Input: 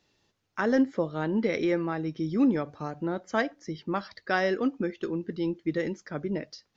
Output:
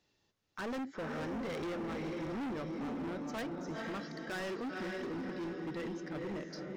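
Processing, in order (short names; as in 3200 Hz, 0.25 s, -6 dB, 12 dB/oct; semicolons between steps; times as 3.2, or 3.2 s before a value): diffused feedback echo 0.483 s, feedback 44%, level -5 dB; 3.8–5.98 dynamic EQ 740 Hz, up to -5 dB, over -39 dBFS, Q 1.2; hard clip -30.5 dBFS, distortion -5 dB; gain -6 dB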